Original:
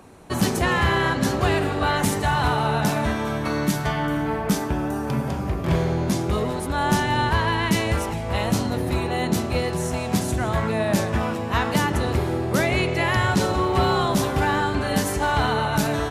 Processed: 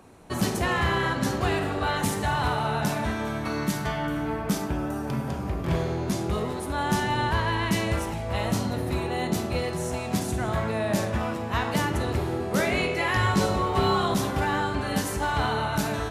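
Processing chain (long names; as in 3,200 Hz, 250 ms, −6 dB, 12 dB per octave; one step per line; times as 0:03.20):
0:12.38–0:14.14: double-tracking delay 20 ms −4.5 dB
convolution reverb RT60 0.55 s, pre-delay 10 ms, DRR 8.5 dB
level −4.5 dB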